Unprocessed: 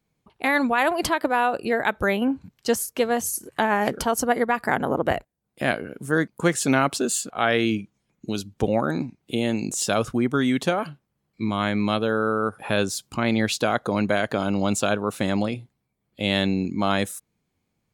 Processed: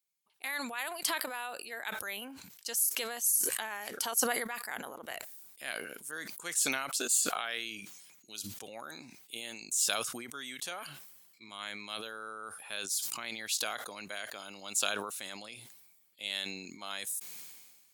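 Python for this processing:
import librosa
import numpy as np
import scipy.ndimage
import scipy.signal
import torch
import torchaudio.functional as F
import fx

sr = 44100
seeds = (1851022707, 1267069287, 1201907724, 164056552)

y = np.diff(x, prepend=0.0)
y = fx.sustainer(y, sr, db_per_s=40.0)
y = F.gain(torch.from_numpy(y), -2.5).numpy()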